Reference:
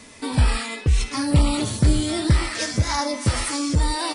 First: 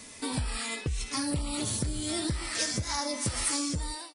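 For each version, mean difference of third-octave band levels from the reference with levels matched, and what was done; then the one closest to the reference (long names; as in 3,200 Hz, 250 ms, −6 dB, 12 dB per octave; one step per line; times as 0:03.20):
3.5 dB: fade-out on the ending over 0.54 s
downward compressor 10 to 1, threshold −23 dBFS, peak gain reduction 11.5 dB
high-shelf EQ 5,000 Hz +10 dB
level −5.5 dB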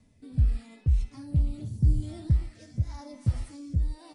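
13.0 dB: drawn EQ curve 130 Hz 0 dB, 430 Hz −17 dB, 730 Hz −14 dB, 1,100 Hz −21 dB
gain on a spectral selection 0:01.68–0:02.03, 480–4,500 Hz −7 dB
rotating-speaker cabinet horn 0.85 Hz
level −3.5 dB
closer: first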